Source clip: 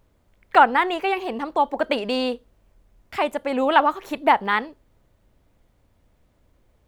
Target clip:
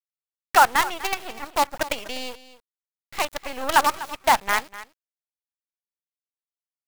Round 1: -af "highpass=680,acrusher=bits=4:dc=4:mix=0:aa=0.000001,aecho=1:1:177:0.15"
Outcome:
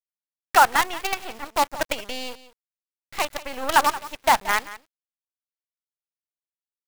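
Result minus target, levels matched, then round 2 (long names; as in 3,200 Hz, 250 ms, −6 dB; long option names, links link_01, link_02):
echo 71 ms early
-af "highpass=680,acrusher=bits=4:dc=4:mix=0:aa=0.000001,aecho=1:1:248:0.15"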